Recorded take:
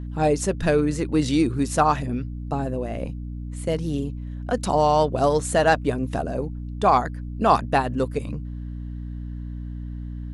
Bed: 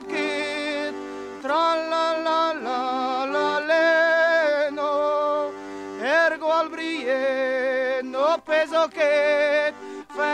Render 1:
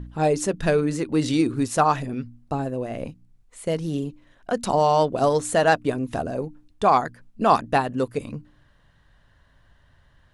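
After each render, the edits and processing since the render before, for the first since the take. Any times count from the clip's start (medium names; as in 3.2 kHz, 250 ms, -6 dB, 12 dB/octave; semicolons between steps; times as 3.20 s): de-hum 60 Hz, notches 5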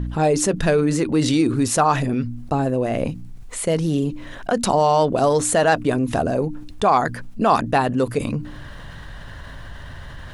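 level flattener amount 50%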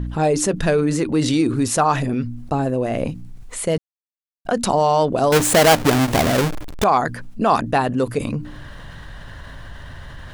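3.78–4.45 s: mute; 5.32–6.84 s: square wave that keeps the level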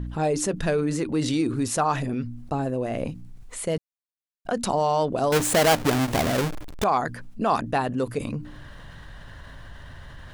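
trim -6 dB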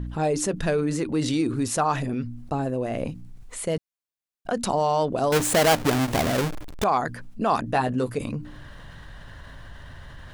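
7.66–8.10 s: doubling 16 ms -7 dB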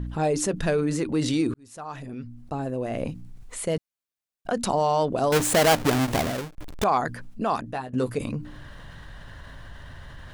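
1.54–3.12 s: fade in; 6.13–6.58 s: fade out; 7.28–7.93 s: fade out, to -16 dB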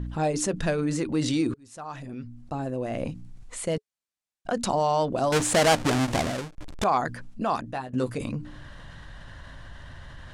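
Chebyshev low-pass 8.5 kHz, order 2; band-stop 430 Hz, Q 12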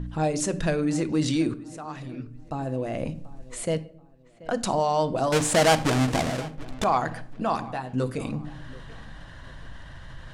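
feedback echo behind a low-pass 733 ms, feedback 33%, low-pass 3.6 kHz, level -20 dB; simulated room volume 960 m³, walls furnished, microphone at 0.62 m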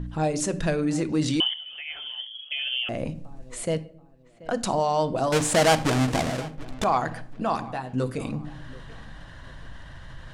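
1.40–2.89 s: frequency inversion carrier 3.3 kHz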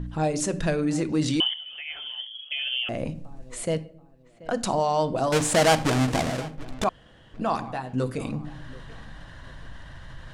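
6.89–7.34 s: room tone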